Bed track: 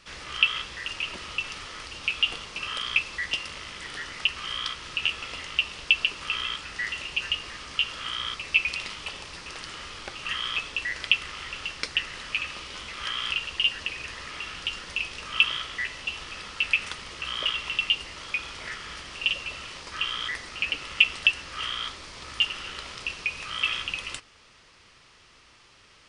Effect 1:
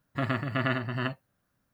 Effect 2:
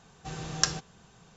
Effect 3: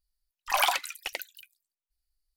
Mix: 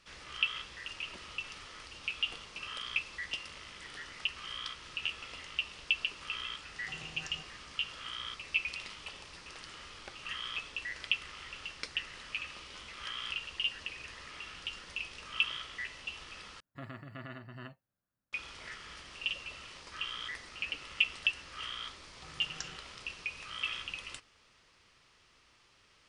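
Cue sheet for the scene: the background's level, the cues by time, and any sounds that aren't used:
bed track -9.5 dB
6.63 s: add 2 -10 dB + compression 3:1, threshold -38 dBFS
16.60 s: replace with 1 -15.5 dB + peak limiter -17.5 dBFS
21.97 s: add 2 -17.5 dB
not used: 3

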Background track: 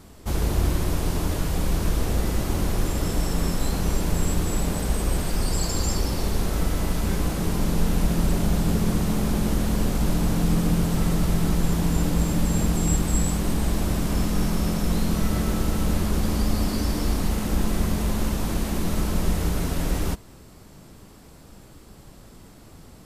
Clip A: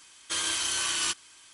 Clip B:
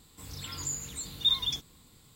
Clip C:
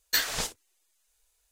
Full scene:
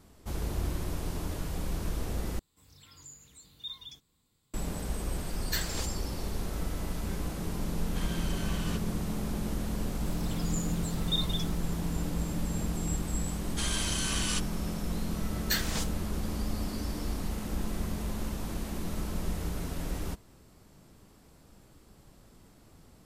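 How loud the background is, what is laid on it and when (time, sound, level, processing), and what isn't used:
background track -10 dB
2.39 s: replace with B -15.5 dB
5.39 s: add C -8 dB
7.65 s: add A -7 dB + low-pass 1.5 kHz 6 dB/octave
9.87 s: add B -6 dB + buffer glitch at 1.60 s
13.27 s: add A -4.5 dB
15.37 s: add C -4.5 dB

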